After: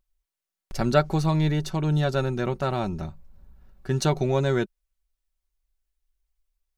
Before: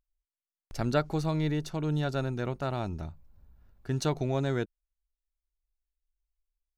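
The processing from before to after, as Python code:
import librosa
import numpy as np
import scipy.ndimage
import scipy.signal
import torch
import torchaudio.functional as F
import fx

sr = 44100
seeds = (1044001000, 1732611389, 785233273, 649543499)

y = x + 0.47 * np.pad(x, (int(5.3 * sr / 1000.0), 0))[:len(x)]
y = F.gain(torch.from_numpy(y), 5.5).numpy()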